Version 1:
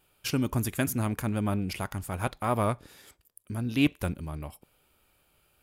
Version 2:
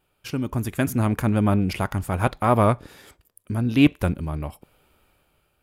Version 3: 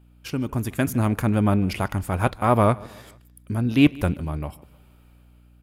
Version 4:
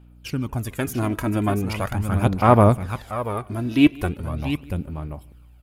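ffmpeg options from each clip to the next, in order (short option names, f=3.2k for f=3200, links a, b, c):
-af "highshelf=f=3.1k:g=-8,dynaudnorm=f=230:g=7:m=9.5dB"
-af "aeval=exprs='val(0)+0.00251*(sin(2*PI*60*n/s)+sin(2*PI*2*60*n/s)/2+sin(2*PI*3*60*n/s)/3+sin(2*PI*4*60*n/s)/4+sin(2*PI*5*60*n/s)/5)':c=same,aecho=1:1:151|302|453:0.0708|0.0326|0.015"
-af "aecho=1:1:686:0.422,aphaser=in_gain=1:out_gain=1:delay=3.1:decay=0.51:speed=0.4:type=sinusoidal,volume=-1.5dB"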